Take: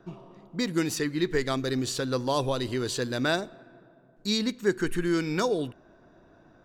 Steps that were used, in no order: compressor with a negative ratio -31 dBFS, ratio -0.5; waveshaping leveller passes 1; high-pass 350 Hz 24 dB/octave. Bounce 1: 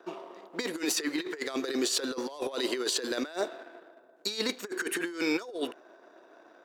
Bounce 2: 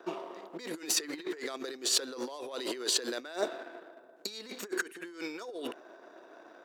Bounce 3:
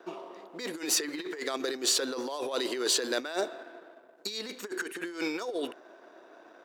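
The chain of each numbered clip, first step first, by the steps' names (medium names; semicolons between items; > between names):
waveshaping leveller > high-pass > compressor with a negative ratio; waveshaping leveller > compressor with a negative ratio > high-pass; compressor with a negative ratio > waveshaping leveller > high-pass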